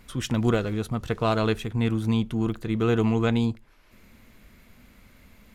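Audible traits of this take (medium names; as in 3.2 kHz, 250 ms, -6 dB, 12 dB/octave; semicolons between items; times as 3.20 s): noise floor -56 dBFS; spectral tilt -6.5 dB/octave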